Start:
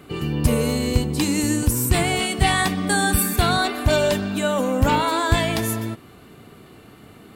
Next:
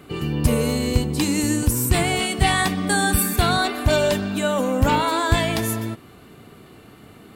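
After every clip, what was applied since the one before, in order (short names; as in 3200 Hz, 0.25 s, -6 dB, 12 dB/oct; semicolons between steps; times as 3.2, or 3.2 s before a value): nothing audible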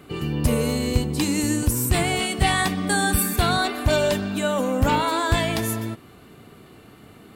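wavefolder -7.5 dBFS; gain -1.5 dB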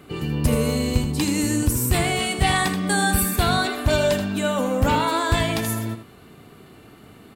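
echo 80 ms -9 dB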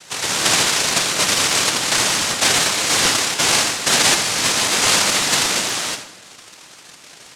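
noise vocoder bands 1; reverb RT60 1.2 s, pre-delay 24 ms, DRR 11 dB; crackling interface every 0.12 s, samples 256, repeat, from 0.65; gain +4 dB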